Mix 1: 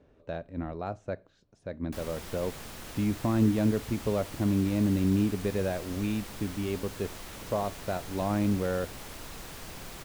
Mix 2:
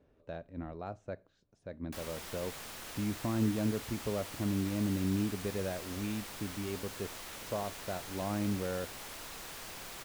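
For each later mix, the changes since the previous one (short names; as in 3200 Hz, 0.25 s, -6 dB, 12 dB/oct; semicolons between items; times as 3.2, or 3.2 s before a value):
speech -6.5 dB; background: add low shelf 350 Hz -11 dB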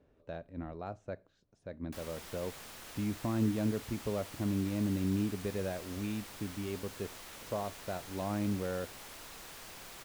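background -3.5 dB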